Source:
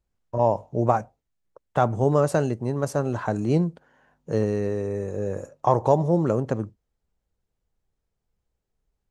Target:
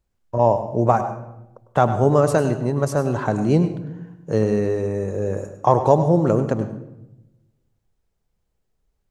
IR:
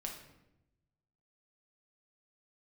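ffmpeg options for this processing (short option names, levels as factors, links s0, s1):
-filter_complex "[0:a]asplit=2[s0][s1];[1:a]atrim=start_sample=2205,adelay=101[s2];[s1][s2]afir=irnorm=-1:irlink=0,volume=0.376[s3];[s0][s3]amix=inputs=2:normalize=0,volume=1.58"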